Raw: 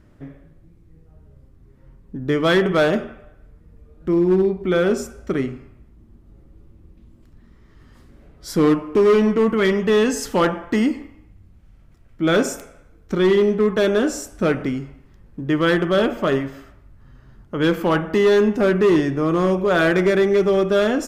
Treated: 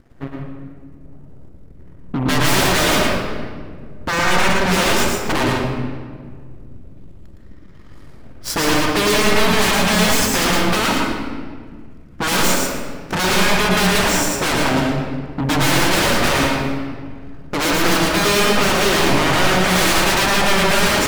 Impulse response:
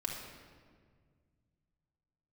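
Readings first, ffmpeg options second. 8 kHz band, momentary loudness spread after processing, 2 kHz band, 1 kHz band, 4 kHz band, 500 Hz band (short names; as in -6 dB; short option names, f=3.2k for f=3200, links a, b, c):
+15.5 dB, 15 LU, +8.0 dB, +8.5 dB, +13.0 dB, -3.5 dB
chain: -filter_complex "[0:a]aeval=exprs='0.316*sin(PI/2*5.62*val(0)/0.316)':c=same,aeval=exprs='0.316*(cos(1*acos(clip(val(0)/0.316,-1,1)))-cos(1*PI/2))+0.0501*(cos(2*acos(clip(val(0)/0.316,-1,1)))-cos(2*PI/2))+0.112*(cos(3*acos(clip(val(0)/0.316,-1,1)))-cos(3*PI/2))+0.0126*(cos(5*acos(clip(val(0)/0.316,-1,1)))-cos(5*PI/2))+0.0251*(cos(8*acos(clip(val(0)/0.316,-1,1)))-cos(8*PI/2))':c=same,asplit=2[a][b];[1:a]atrim=start_sample=2205,adelay=113[c];[b][c]afir=irnorm=-1:irlink=0,volume=-1.5dB[d];[a][d]amix=inputs=2:normalize=0,volume=-7.5dB"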